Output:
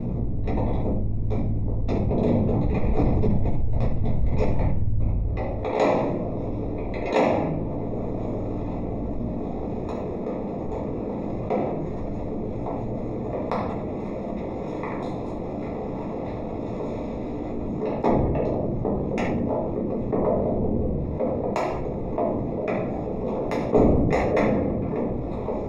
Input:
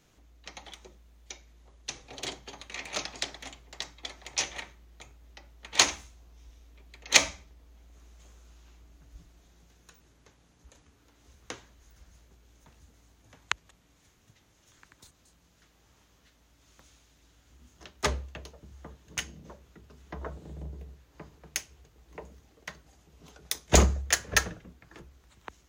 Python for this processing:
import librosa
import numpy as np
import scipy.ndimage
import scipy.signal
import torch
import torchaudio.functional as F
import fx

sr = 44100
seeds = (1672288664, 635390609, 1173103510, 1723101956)

y = fx.cycle_switch(x, sr, every=3, mode='inverted')
y = fx.highpass(y, sr, hz=fx.steps((0.0, 120.0), (2.77, 51.0), (5.02, 430.0)), slope=12)
y = fx.tilt_eq(y, sr, slope=-4.5)
y = y * np.sin(2.0 * np.pi * 29.0 * np.arange(len(y)) / sr)
y = scipy.signal.lfilter(np.full(29, 1.0 / 29), 1.0, y)
y = fx.room_shoebox(y, sr, seeds[0], volume_m3=74.0, walls='mixed', distance_m=1.6)
y = fx.env_flatten(y, sr, amount_pct=70)